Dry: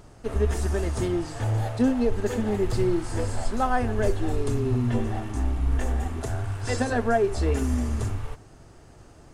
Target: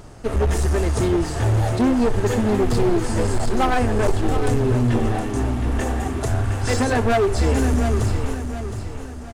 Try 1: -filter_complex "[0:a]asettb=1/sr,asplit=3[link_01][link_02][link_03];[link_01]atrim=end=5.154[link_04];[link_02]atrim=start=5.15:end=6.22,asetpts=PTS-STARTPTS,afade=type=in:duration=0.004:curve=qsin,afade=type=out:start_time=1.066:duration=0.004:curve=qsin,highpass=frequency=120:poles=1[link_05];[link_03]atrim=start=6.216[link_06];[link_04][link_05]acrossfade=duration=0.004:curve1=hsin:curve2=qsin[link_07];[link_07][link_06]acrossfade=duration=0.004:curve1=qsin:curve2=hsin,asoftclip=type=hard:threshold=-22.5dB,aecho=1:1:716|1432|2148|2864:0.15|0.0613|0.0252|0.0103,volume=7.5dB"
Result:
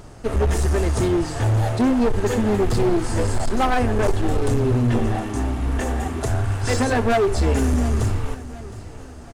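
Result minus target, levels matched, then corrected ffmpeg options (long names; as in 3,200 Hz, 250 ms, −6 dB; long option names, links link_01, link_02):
echo-to-direct −7.5 dB
-filter_complex "[0:a]asettb=1/sr,asplit=3[link_01][link_02][link_03];[link_01]atrim=end=5.154[link_04];[link_02]atrim=start=5.15:end=6.22,asetpts=PTS-STARTPTS,afade=type=in:duration=0.004:curve=qsin,afade=type=out:start_time=1.066:duration=0.004:curve=qsin,highpass=frequency=120:poles=1[link_05];[link_03]atrim=start=6.216[link_06];[link_04][link_05]acrossfade=duration=0.004:curve1=hsin:curve2=qsin[link_07];[link_07][link_06]acrossfade=duration=0.004:curve1=qsin:curve2=hsin,asoftclip=type=hard:threshold=-22.5dB,aecho=1:1:716|1432|2148|2864|3580:0.355|0.145|0.0596|0.0245|0.01,volume=7.5dB"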